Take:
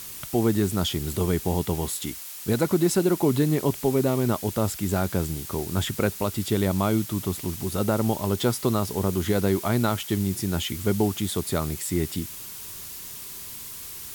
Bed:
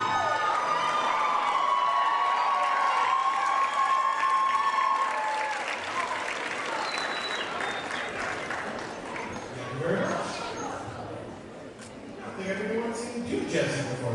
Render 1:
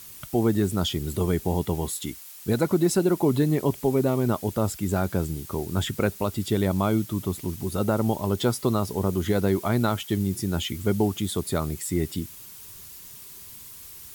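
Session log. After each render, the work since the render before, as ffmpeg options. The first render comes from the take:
-af "afftdn=nr=7:nf=-39"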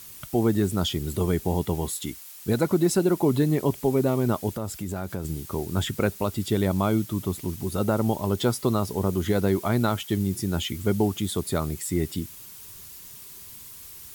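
-filter_complex "[0:a]asettb=1/sr,asplit=3[s0][s1][s2];[s0]atrim=end=4.524[s3];[s1]atrim=start=4.52:end=5.25,asetpts=PTS-STARTPTS,afade=t=in:d=0.004:c=qsin,afade=t=out:st=0.726:d=0.004:c=qsin,acompressor=threshold=0.0355:ratio=2.5:attack=3.2:release=140:knee=1:detection=peak[s4];[s2]atrim=start=5.246[s5];[s3][s4]acrossfade=d=0.004:c1=hsin:c2=qsin[s6];[s6][s5]acrossfade=d=0.004:c1=qsin:c2=hsin"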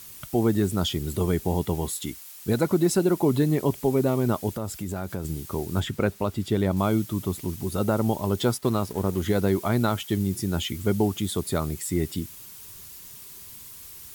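-filter_complex "[0:a]asettb=1/sr,asplit=3[s0][s1][s2];[s0]atrim=end=5.804[s3];[s1]atrim=start=5.8:end=6.77,asetpts=PTS-STARTPTS,afade=t=in:d=0.004:c=qsin,afade=t=out:st=0.966:d=0.004:c=qsin,highshelf=f=4600:g=-8[s4];[s2]atrim=start=6.766[s5];[s3][s4]acrossfade=d=0.004:c1=hsin:c2=qsin[s6];[s6][s5]acrossfade=d=0.004:c1=qsin:c2=hsin,asettb=1/sr,asplit=3[s7][s8][s9];[s7]atrim=end=8.574[s10];[s8]atrim=start=8.57:end=9.22,asetpts=PTS-STARTPTS,afade=t=in:d=0.004:c=qsin,afade=t=out:st=0.646:d=0.004:c=qsin,aeval=exprs='sgn(val(0))*max(abs(val(0))-0.00841,0)':c=same[s11];[s9]atrim=start=9.216[s12];[s10][s11]acrossfade=d=0.004:c1=hsin:c2=qsin[s13];[s13][s12]acrossfade=d=0.004:c1=qsin:c2=hsin"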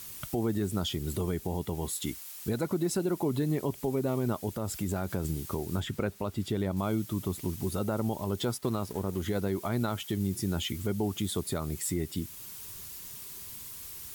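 -af "alimiter=limit=0.0944:level=0:latency=1:release=310"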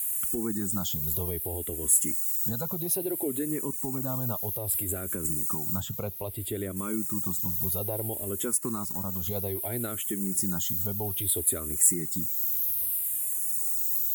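-filter_complex "[0:a]aexciter=amount=8.3:drive=2.3:freq=7000,asplit=2[s0][s1];[s1]afreqshift=-0.61[s2];[s0][s2]amix=inputs=2:normalize=1"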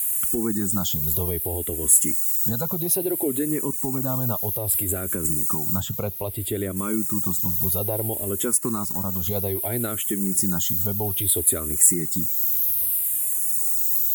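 -af "volume=2,alimiter=limit=0.794:level=0:latency=1"

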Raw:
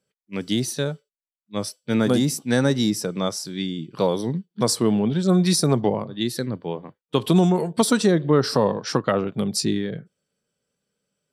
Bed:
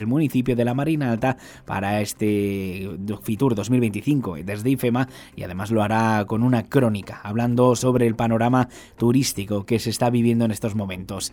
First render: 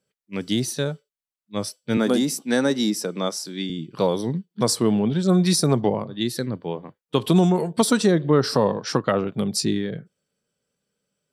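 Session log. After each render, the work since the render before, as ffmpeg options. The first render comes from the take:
-filter_complex "[0:a]asettb=1/sr,asplit=3[s0][s1][s2];[s0]atrim=end=1.974[s3];[s1]atrim=start=1.97:end=3.7,asetpts=PTS-STARTPTS,afade=t=in:d=0.004:c=qsin,afade=t=out:st=1.726:d=0.004:c=qsin,highpass=f=190:w=0.5412,highpass=f=190:w=1.3066[s4];[s2]atrim=start=3.696[s5];[s3][s4]acrossfade=d=0.004:c1=hsin:c2=qsin[s6];[s6][s5]acrossfade=d=0.004:c1=qsin:c2=hsin"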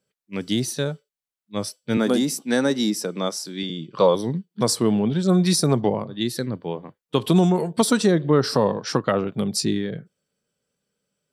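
-filter_complex "[0:a]asettb=1/sr,asplit=3[s0][s1][s2];[s0]atrim=end=3.634[s3];[s1]atrim=start=3.63:end=4.15,asetpts=PTS-STARTPTS,afade=t=in:d=0.004:c=qsin,afade=t=out:st=0.516:d=0.004:c=qsin,highpass=120,equalizer=f=270:t=q:w=4:g=-4,equalizer=f=540:t=q:w=4:g=7,equalizer=f=1100:t=q:w=4:g=10,equalizer=f=3400:t=q:w=4:g=4,lowpass=f=7600:w=0.5412,lowpass=f=7600:w=1.3066[s4];[s2]atrim=start=4.146[s5];[s3][s4]acrossfade=d=0.004:c1=hsin:c2=qsin[s6];[s6][s5]acrossfade=d=0.004:c1=qsin:c2=hsin"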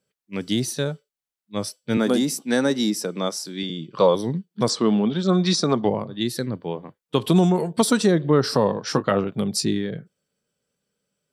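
-filter_complex "[0:a]asplit=3[s0][s1][s2];[s0]afade=t=out:st=4.68:d=0.02[s3];[s1]highpass=200,equalizer=f=210:t=q:w=4:g=4,equalizer=f=1200:t=q:w=4:g=6,equalizer=f=3500:t=q:w=4:g=5,lowpass=f=6700:w=0.5412,lowpass=f=6700:w=1.3066,afade=t=in:st=4.68:d=0.02,afade=t=out:st=5.84:d=0.02[s4];[s2]afade=t=in:st=5.84:d=0.02[s5];[s3][s4][s5]amix=inputs=3:normalize=0,asettb=1/sr,asplit=3[s6][s7][s8];[s6]atrim=end=8.844[s9];[s7]atrim=start=8.84:end=9.24,asetpts=PTS-STARTPTS,afade=t=in:d=0.004:c=qsin,afade=t=out:st=0.396:d=0.004:c=qsin,asplit=2[s10][s11];[s11]adelay=20,volume=0.299[s12];[s10][s12]amix=inputs=2:normalize=0,atrim=end_sample=17640[s13];[s8]atrim=start=9.236[s14];[s9][s13]acrossfade=d=0.004:c1=hsin:c2=qsin[s15];[s15][s14]acrossfade=d=0.004:c1=qsin:c2=hsin"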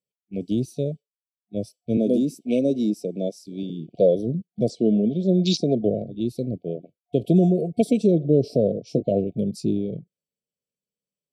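-af "afwtdn=0.0447,afftfilt=real='re*(1-between(b*sr/4096,720,2200))':imag='im*(1-between(b*sr/4096,720,2200))':win_size=4096:overlap=0.75"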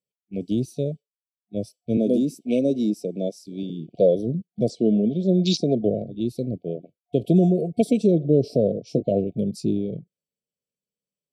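-af anull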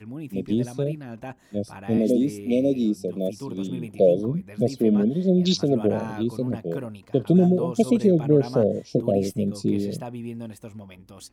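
-filter_complex "[1:a]volume=0.168[s0];[0:a][s0]amix=inputs=2:normalize=0"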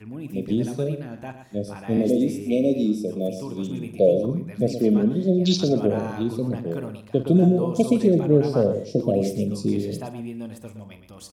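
-filter_complex "[0:a]asplit=2[s0][s1];[s1]adelay=47,volume=0.251[s2];[s0][s2]amix=inputs=2:normalize=0,asplit=2[s3][s4];[s4]aecho=0:1:117|234:0.316|0.0474[s5];[s3][s5]amix=inputs=2:normalize=0"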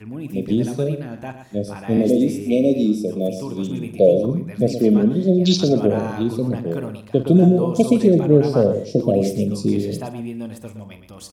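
-af "volume=1.58"

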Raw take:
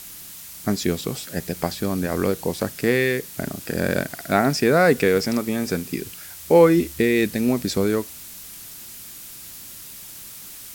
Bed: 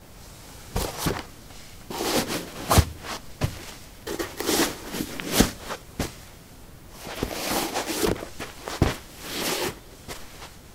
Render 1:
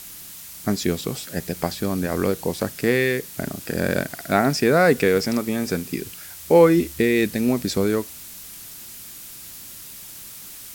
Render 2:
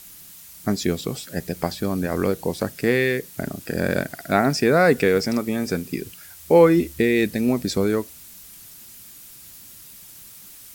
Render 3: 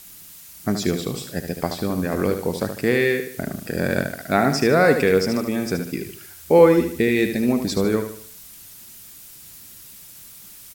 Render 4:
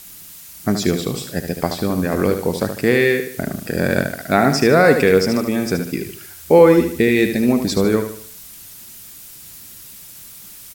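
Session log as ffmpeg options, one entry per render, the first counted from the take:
-af anull
-af "afftdn=nr=6:nf=-40"
-af "aecho=1:1:75|150|225|300|375:0.398|0.159|0.0637|0.0255|0.0102"
-af "volume=1.58,alimiter=limit=0.891:level=0:latency=1"

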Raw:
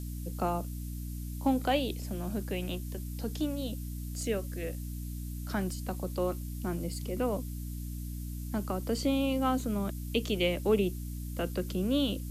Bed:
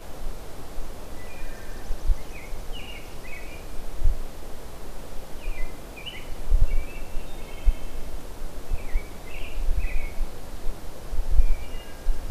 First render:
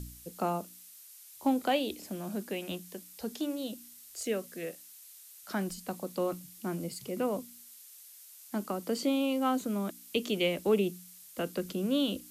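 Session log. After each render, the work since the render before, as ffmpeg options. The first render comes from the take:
-af "bandreject=f=60:t=h:w=4,bandreject=f=120:t=h:w=4,bandreject=f=180:t=h:w=4,bandreject=f=240:t=h:w=4,bandreject=f=300:t=h:w=4"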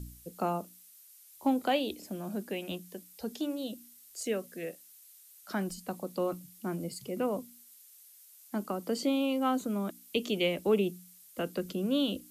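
-af "afftdn=nr=6:nf=-53"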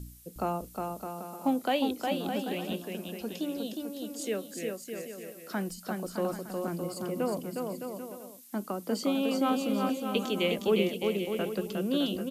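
-af "aecho=1:1:360|612|788.4|911.9|998.3:0.631|0.398|0.251|0.158|0.1"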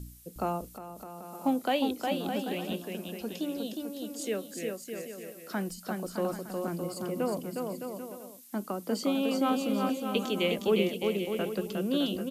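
-filter_complex "[0:a]asettb=1/sr,asplit=3[s0][s1][s2];[s0]atrim=end=0.664[s3];[s1]atrim=start=0.66:end=1.35,asetpts=PTS-STARTPTS,afade=t=in:d=0.004:c=qsin,afade=t=out:st=0.686:d=0.004:c=qsin,acompressor=threshold=0.0112:ratio=6:attack=3.2:release=140:knee=1:detection=peak[s4];[s2]atrim=start=1.346[s5];[s3][s4]acrossfade=d=0.004:c1=hsin:c2=qsin[s6];[s6][s5]acrossfade=d=0.004:c1=qsin:c2=hsin"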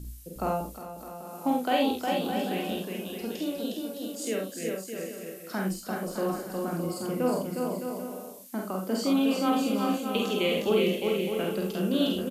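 -filter_complex "[0:a]asplit=2[s0][s1];[s1]adelay=36,volume=0.447[s2];[s0][s2]amix=inputs=2:normalize=0,aecho=1:1:48|69:0.708|0.422"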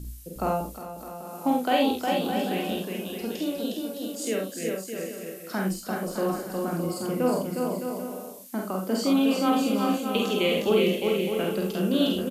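-af "volume=1.33"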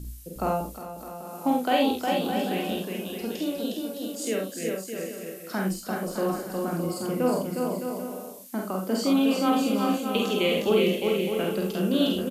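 -af anull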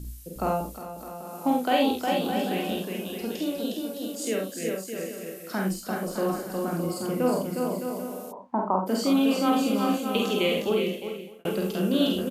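-filter_complex "[0:a]asplit=3[s0][s1][s2];[s0]afade=t=out:st=8.31:d=0.02[s3];[s1]lowpass=f=940:t=q:w=9,afade=t=in:st=8.31:d=0.02,afade=t=out:st=8.86:d=0.02[s4];[s2]afade=t=in:st=8.86:d=0.02[s5];[s3][s4][s5]amix=inputs=3:normalize=0,asplit=2[s6][s7];[s6]atrim=end=11.45,asetpts=PTS-STARTPTS,afade=t=out:st=10.42:d=1.03[s8];[s7]atrim=start=11.45,asetpts=PTS-STARTPTS,afade=t=in:d=0.004:c=hsin[s9];[s8][s9]concat=n=2:v=0:a=1"

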